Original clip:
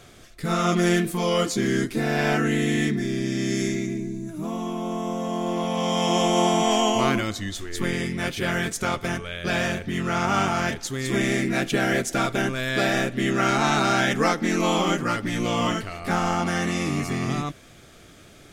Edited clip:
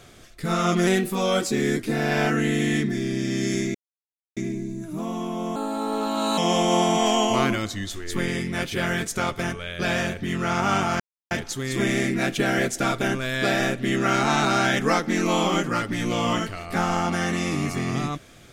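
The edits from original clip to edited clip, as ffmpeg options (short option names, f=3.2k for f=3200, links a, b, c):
-filter_complex "[0:a]asplit=7[a][b][c][d][e][f][g];[a]atrim=end=0.874[h];[b]atrim=start=0.87:end=1.87,asetpts=PTS-STARTPTS,asetrate=47628,aresample=44100,atrim=end_sample=40833,asetpts=PTS-STARTPTS[i];[c]atrim=start=1.866:end=3.82,asetpts=PTS-STARTPTS,afade=t=out:st=1.95:d=0.004:c=hsin,apad=pad_dur=0.62[j];[d]atrim=start=3.82:end=5.014,asetpts=PTS-STARTPTS,afade=t=in:d=0.004:c=hsin[k];[e]atrim=start=5.01:end=6.03,asetpts=PTS-STARTPTS,asetrate=54684,aresample=44100[l];[f]atrim=start=6.026:end=10.65,asetpts=PTS-STARTPTS,afade=t=out:st=4.62:d=0.004:c=hsin,apad=pad_dur=0.31[m];[g]atrim=start=10.65,asetpts=PTS-STARTPTS,afade=t=in:d=0.004:c=hsin[n];[h][i]acrossfade=d=0.004:c1=hsin:c2=hsin[o];[j][k]concat=n=2:v=0:a=1[p];[o][p]acrossfade=d=0.004:c1=hsin:c2=hsin[q];[q][l]acrossfade=d=0.004:c1=hsin:c2=hsin[r];[m][n]concat=n=2:v=0:a=1[s];[r][s]acrossfade=d=0.004:c1=hsin:c2=hsin"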